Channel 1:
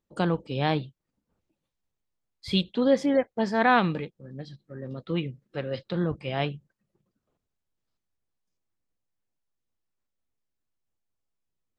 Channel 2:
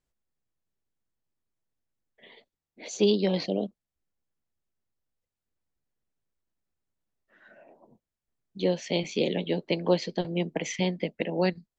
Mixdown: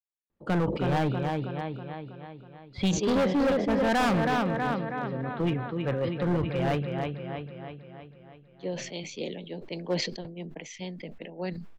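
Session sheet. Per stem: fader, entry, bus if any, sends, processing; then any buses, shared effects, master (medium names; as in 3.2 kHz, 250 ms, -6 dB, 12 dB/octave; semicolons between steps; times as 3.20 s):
+2.5 dB, 0.30 s, no send, echo send -6.5 dB, low-pass 2.3 kHz 12 dB/octave
-11.0 dB, 0.00 s, no send, no echo send, three bands expanded up and down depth 100%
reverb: none
echo: feedback delay 322 ms, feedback 56%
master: overload inside the chain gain 21.5 dB; decay stretcher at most 58 dB/s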